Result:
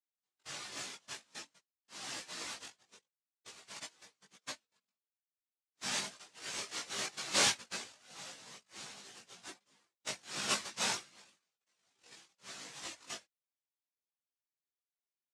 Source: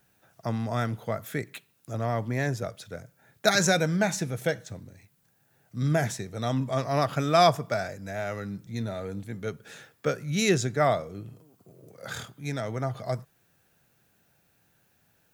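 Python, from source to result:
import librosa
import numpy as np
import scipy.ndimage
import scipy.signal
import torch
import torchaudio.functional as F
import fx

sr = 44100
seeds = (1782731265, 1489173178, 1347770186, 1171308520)

y = fx.double_bandpass(x, sr, hz=760.0, octaves=1.2, at=(2.94, 5.8), fade=0.02)
y = fx.noise_vocoder(y, sr, seeds[0], bands=1)
y = fx.chorus_voices(y, sr, voices=6, hz=0.43, base_ms=18, depth_ms=3.3, mix_pct=45)
y = fx.wow_flutter(y, sr, seeds[1], rate_hz=2.1, depth_cents=26.0)
y = fx.spectral_expand(y, sr, expansion=1.5)
y = y * 10.0 ** (-7.0 / 20.0)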